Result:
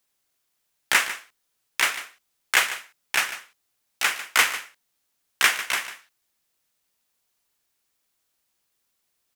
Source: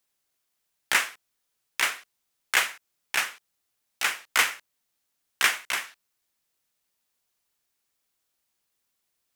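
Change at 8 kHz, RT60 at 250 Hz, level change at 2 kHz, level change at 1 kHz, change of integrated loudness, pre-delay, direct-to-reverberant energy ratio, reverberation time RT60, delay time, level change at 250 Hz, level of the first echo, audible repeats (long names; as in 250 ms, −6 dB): +3.0 dB, no reverb audible, +3.0 dB, +3.0 dB, +3.0 dB, no reverb audible, no reverb audible, no reverb audible, 148 ms, +3.0 dB, −13.5 dB, 1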